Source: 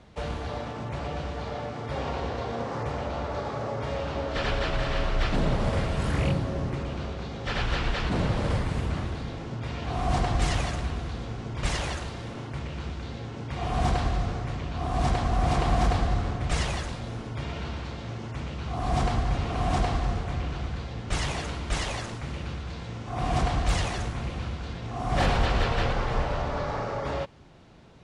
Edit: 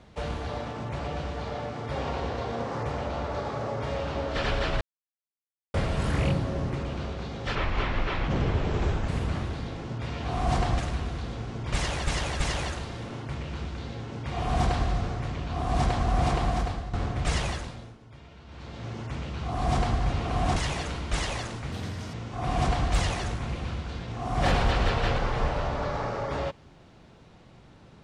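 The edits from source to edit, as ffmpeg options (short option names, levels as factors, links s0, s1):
-filter_complex "[0:a]asplit=14[s0][s1][s2][s3][s4][s5][s6][s7][s8][s9][s10][s11][s12][s13];[s0]atrim=end=4.81,asetpts=PTS-STARTPTS,afade=t=out:st=4.806:d=0.004:c=hsin[s14];[s1]atrim=start=4.81:end=5.74,asetpts=PTS-STARTPTS,volume=0[s15];[s2]atrim=start=5.74:end=7.554,asetpts=PTS-STARTPTS,afade=t=in:d=0.004:c=hsin[s16];[s3]atrim=start=7.55:end=8.7,asetpts=PTS-STARTPTS,asetrate=33075,aresample=44100[s17];[s4]atrim=start=8.696:end=10.412[s18];[s5]atrim=start=10.698:end=11.982[s19];[s6]atrim=start=11.648:end=11.982[s20];[s7]atrim=start=11.648:end=16.18,asetpts=PTS-STARTPTS,afade=t=out:st=3.842:d=0.69:silence=0.223872[s21];[s8]atrim=start=16.18:end=17.21,asetpts=PTS-STARTPTS,afade=t=in:d=0.004:c=hsin:silence=0.223872,afade=t=out:st=0.55:d=0.48:silence=0.16788[s22];[s9]atrim=start=17.21:end=17.7,asetpts=PTS-STARTPTS,volume=0.168[s23];[s10]atrim=start=17.7:end=19.812,asetpts=PTS-STARTPTS,afade=t=in:d=0.48:silence=0.16788[s24];[s11]atrim=start=21.148:end=22.314[s25];[s12]atrim=start=22.31:end=22.88,asetpts=PTS-STARTPTS,asetrate=60858,aresample=44100,atrim=end_sample=18215,asetpts=PTS-STARTPTS[s26];[s13]atrim=start=22.876[s27];[s14][s15][s16]concat=n=3:v=0:a=1[s28];[s28][s17]acrossfade=d=0.004:c1=hsin:c2=hsin[s29];[s29][s18]acrossfade=d=0.004:c1=hsin:c2=hsin[s30];[s30][s19]acrossfade=d=0.004:c1=hsin:c2=hsin[s31];[s31][s20]acrossfade=d=0.004:c1=hsin:c2=hsin[s32];[s21][s22][s23][s24]concat=n=4:v=0:a=1[s33];[s32][s33]acrossfade=d=0.004:c1=hsin:c2=hsin[s34];[s34][s25]acrossfade=d=0.004:c1=hsin:c2=hsin[s35];[s35][s26]acrossfade=d=0.004:c1=hsin:c2=hsin[s36];[s36][s27]acrossfade=d=0.004:c1=hsin:c2=hsin"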